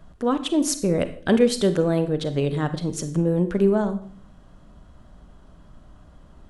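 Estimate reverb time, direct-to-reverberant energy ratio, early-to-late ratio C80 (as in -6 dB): 0.50 s, 10.5 dB, 16.0 dB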